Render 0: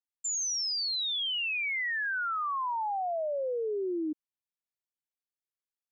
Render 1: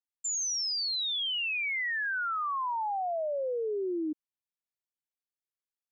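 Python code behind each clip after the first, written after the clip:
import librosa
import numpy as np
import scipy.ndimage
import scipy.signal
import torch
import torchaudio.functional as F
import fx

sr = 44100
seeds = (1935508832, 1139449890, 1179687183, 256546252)

y = x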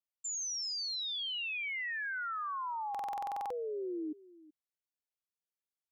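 y = x + 10.0 ** (-20.0 / 20.0) * np.pad(x, (int(377 * sr / 1000.0), 0))[:len(x)]
y = fx.buffer_glitch(y, sr, at_s=(2.9,), block=2048, repeats=12)
y = y * librosa.db_to_amplitude(-6.0)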